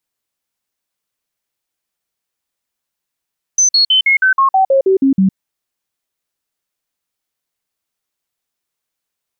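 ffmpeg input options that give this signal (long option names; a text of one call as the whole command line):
ffmpeg -f lavfi -i "aevalsrc='0.422*clip(min(mod(t,0.16),0.11-mod(t,0.16))/0.005,0,1)*sin(2*PI*6120*pow(2,-floor(t/0.16)/2)*mod(t,0.16))':duration=1.76:sample_rate=44100" out.wav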